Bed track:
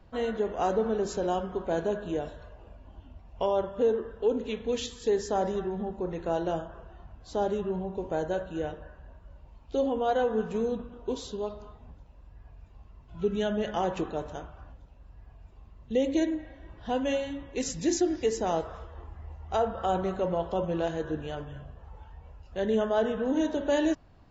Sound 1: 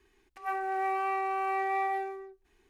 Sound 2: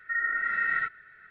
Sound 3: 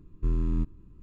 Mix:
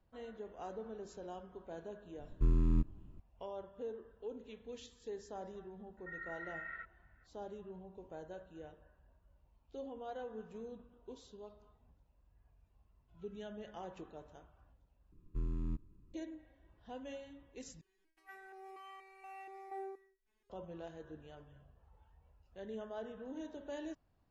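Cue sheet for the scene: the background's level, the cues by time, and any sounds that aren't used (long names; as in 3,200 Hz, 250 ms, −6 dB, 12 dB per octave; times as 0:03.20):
bed track −18.5 dB
0:02.18: mix in 3 −3 dB
0:05.97: mix in 2 −18 dB + high-frequency loss of the air 120 metres
0:15.12: overwrite with 3 −11 dB
0:17.81: overwrite with 1 + step-sequenced resonator 4.2 Hz 190–470 Hz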